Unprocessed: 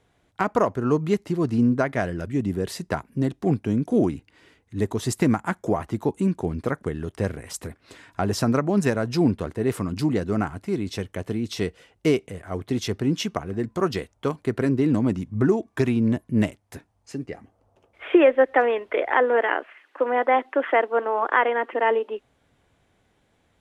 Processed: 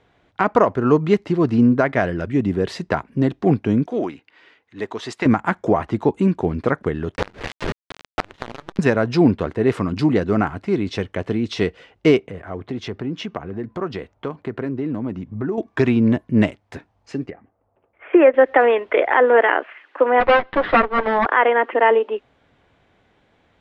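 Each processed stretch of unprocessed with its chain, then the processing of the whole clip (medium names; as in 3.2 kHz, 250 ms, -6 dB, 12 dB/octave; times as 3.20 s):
3.86–5.26 s: high-pass 900 Hz 6 dB/octave + treble shelf 8.7 kHz -11.5 dB
7.16–8.79 s: LPC vocoder at 8 kHz pitch kept + companded quantiser 2-bit + inverted gate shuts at -12 dBFS, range -27 dB
12.18–15.58 s: high-pass 48 Hz + treble shelf 3 kHz -9 dB + compression 2:1, threshold -34 dBFS
17.30–18.34 s: low-pass 2.4 kHz 24 dB/octave + upward expansion, over -30 dBFS
20.20–21.26 s: comb filter that takes the minimum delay 9.5 ms + boxcar filter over 6 samples
whole clip: low-pass 3.8 kHz 12 dB/octave; bass shelf 210 Hz -5 dB; loudness maximiser +10 dB; trim -2.5 dB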